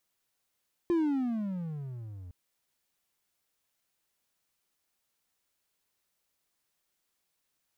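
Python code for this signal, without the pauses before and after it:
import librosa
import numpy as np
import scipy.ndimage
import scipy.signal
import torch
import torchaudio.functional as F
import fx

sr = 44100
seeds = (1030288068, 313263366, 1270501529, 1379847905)

y = fx.riser_tone(sr, length_s=1.41, level_db=-21, wave='triangle', hz=352.0, rise_st=-24.5, swell_db=-19.5)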